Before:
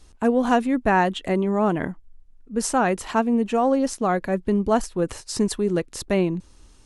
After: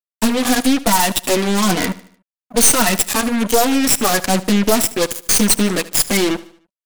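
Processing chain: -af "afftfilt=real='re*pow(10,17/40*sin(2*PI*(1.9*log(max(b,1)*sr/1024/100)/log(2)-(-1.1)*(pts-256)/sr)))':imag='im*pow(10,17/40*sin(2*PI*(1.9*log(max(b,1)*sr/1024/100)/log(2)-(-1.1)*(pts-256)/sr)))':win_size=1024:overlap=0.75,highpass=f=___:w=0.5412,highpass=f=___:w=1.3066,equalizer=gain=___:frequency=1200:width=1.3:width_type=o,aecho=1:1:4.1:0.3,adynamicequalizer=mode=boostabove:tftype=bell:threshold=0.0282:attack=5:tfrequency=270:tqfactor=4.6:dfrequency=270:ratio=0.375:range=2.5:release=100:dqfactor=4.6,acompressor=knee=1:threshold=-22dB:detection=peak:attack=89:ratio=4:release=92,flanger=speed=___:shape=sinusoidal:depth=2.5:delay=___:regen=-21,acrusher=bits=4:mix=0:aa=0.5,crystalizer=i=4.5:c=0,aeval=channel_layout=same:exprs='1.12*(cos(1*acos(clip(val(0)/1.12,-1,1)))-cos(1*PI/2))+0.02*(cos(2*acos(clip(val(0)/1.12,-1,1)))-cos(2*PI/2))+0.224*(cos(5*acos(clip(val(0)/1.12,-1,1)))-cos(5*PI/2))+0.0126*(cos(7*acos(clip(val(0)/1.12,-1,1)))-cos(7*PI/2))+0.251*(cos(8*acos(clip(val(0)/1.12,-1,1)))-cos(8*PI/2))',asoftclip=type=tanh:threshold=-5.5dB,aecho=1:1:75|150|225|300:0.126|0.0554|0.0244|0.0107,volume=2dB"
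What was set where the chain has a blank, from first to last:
160, 160, -2, 0.8, 8.3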